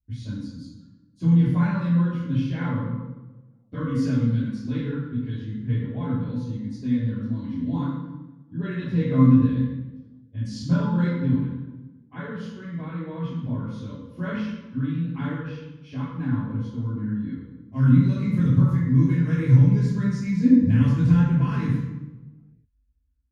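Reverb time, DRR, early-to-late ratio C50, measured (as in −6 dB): 1.1 s, −14.0 dB, −0.5 dB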